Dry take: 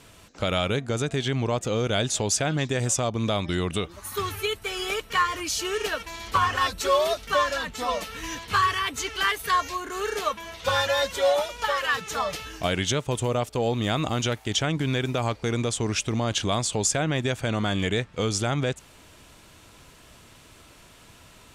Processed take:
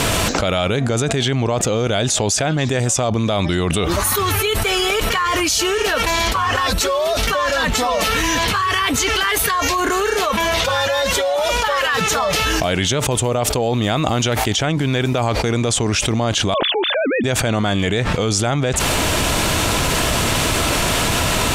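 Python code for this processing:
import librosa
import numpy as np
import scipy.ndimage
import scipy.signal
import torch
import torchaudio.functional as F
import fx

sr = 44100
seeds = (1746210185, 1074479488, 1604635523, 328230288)

y = fx.sine_speech(x, sr, at=(16.54, 17.24))
y = fx.peak_eq(y, sr, hz=690.0, db=3.0, octaves=0.69)
y = fx.env_flatten(y, sr, amount_pct=100)
y = F.gain(torch.from_numpy(y), -1.5).numpy()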